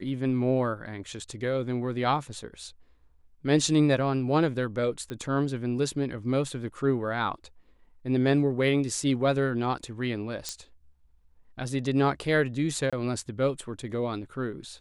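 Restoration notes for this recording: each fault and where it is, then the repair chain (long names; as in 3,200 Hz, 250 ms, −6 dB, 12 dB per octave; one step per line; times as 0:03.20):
0:05.10: click −23 dBFS
0:10.49: click −16 dBFS
0:12.90–0:12.93: drop-out 26 ms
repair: click removal
repair the gap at 0:12.90, 26 ms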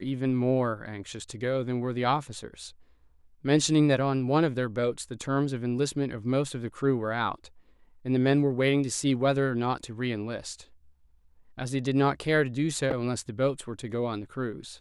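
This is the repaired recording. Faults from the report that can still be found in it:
none of them is left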